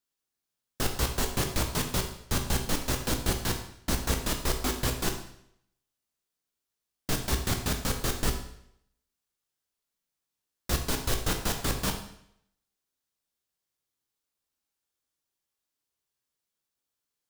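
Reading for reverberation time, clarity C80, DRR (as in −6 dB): 0.70 s, 10.5 dB, 3.5 dB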